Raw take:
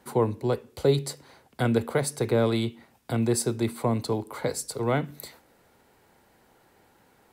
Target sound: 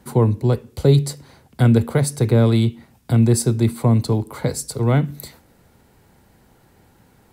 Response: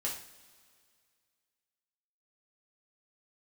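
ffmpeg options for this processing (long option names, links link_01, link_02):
-af "bass=frequency=250:gain=12,treble=frequency=4000:gain=3,volume=2.5dB"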